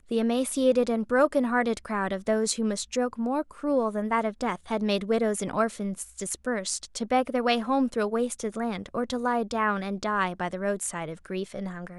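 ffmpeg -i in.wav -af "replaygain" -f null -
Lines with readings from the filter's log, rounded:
track_gain = +7.2 dB
track_peak = 0.237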